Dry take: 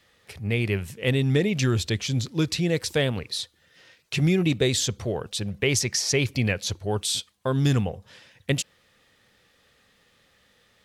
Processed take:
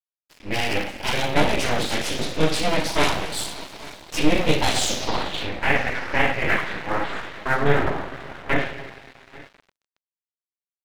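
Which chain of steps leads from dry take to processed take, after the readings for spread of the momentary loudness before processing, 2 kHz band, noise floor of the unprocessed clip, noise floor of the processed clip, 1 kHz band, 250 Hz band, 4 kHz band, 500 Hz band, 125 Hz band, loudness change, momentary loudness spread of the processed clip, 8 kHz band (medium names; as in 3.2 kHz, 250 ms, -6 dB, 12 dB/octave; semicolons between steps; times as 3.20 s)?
9 LU, +7.5 dB, -63 dBFS, under -85 dBFS, +14.5 dB, -0.5 dB, +2.0 dB, +2.5 dB, -6.0 dB, +1.5 dB, 11 LU, -2.0 dB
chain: high-pass 140 Hz 12 dB/octave; distance through air 170 m; hum notches 60/120/180/240/300 Hz; two-slope reverb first 0.56 s, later 4.9 s, from -18 dB, DRR -9 dB; full-wave rectifier; on a send: feedback delay 840 ms, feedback 21%, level -21.5 dB; on the sum: low-pass sweep 11 kHz -> 1.8 kHz, 4.67–5.64 s; crossover distortion -33.5 dBFS; bass shelf 380 Hz -4 dB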